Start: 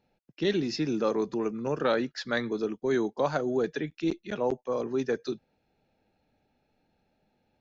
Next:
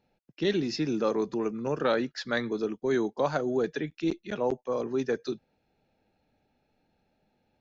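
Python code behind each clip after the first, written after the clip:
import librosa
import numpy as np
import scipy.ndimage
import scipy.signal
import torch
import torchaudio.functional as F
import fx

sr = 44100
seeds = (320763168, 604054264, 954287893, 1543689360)

y = x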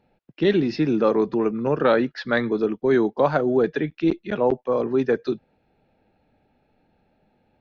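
y = scipy.ndimage.gaussian_filter1d(x, 2.2, mode='constant')
y = y * 10.0 ** (8.0 / 20.0)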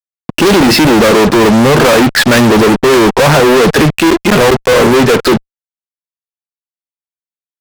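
y = fx.fuzz(x, sr, gain_db=45.0, gate_db=-45.0)
y = y * 10.0 ** (7.5 / 20.0)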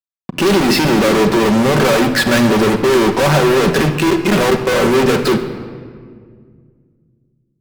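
y = fx.room_shoebox(x, sr, seeds[0], volume_m3=3300.0, walls='mixed', distance_m=1.1)
y = y * 10.0 ** (-7.0 / 20.0)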